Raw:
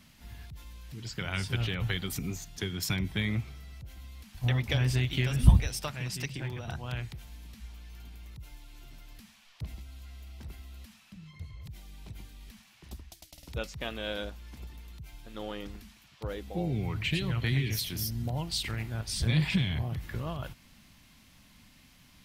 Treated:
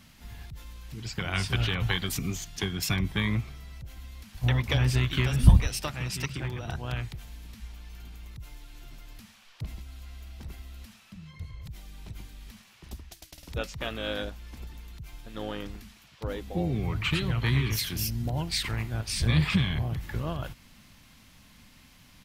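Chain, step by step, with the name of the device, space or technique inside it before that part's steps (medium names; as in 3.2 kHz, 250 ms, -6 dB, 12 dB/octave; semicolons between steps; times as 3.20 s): 1.35–2.65 s: peaking EQ 4.4 kHz +3 dB 2.5 oct; octave pedal (harmony voices -12 st -9 dB); trim +2.5 dB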